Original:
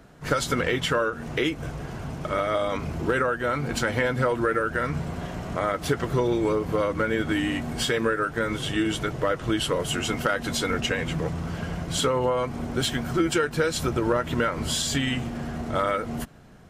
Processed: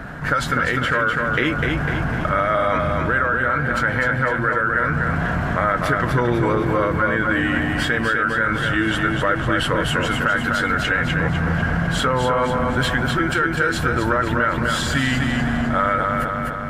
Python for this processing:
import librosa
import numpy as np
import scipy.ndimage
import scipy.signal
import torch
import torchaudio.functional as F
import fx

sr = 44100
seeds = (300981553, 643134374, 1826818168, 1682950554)

p1 = fx.graphic_eq_15(x, sr, hz=(400, 1600, 6300), db=(-7, 11, -3))
p2 = fx.rider(p1, sr, range_db=4, speed_s=0.5)
p3 = fx.high_shelf(p2, sr, hz=2500.0, db=-10.0)
p4 = p3 + fx.echo_feedback(p3, sr, ms=251, feedback_pct=44, wet_db=-5.0, dry=0)
p5 = fx.env_flatten(p4, sr, amount_pct=50)
y = p5 * librosa.db_to_amplitude(1.5)